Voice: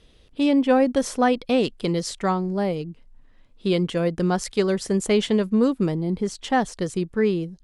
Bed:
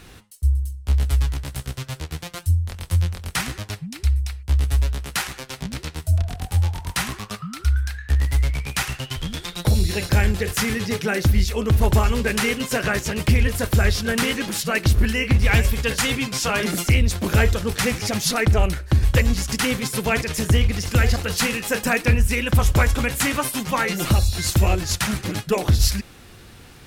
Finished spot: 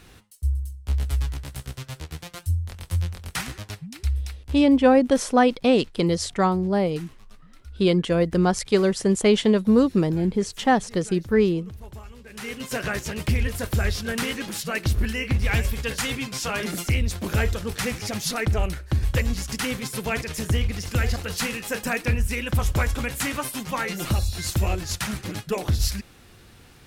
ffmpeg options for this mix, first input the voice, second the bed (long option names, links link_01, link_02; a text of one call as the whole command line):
ffmpeg -i stem1.wav -i stem2.wav -filter_complex "[0:a]adelay=4150,volume=2dB[link_01];[1:a]volume=13dB,afade=type=out:start_time=4.33:duration=0.3:silence=0.11885,afade=type=in:start_time=12.29:duration=0.47:silence=0.125893[link_02];[link_01][link_02]amix=inputs=2:normalize=0" out.wav